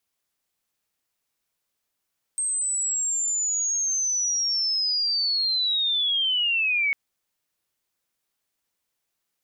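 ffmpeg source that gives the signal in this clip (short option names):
-f lavfi -i "aevalsrc='pow(10,(-23+3*t/4.55)/20)*sin(2*PI*(8400*t-6200*t*t/(2*4.55)))':d=4.55:s=44100"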